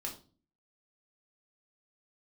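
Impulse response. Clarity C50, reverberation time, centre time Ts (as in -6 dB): 10.0 dB, 0.40 s, 19 ms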